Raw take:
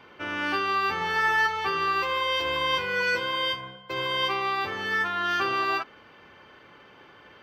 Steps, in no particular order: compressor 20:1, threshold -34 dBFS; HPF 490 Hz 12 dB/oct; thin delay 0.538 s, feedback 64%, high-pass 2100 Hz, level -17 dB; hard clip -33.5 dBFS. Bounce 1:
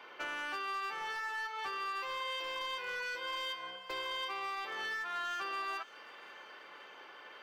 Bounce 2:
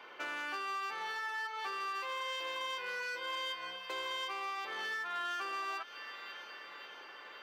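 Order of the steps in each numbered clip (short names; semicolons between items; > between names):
compressor > HPF > hard clip > thin delay; thin delay > compressor > hard clip > HPF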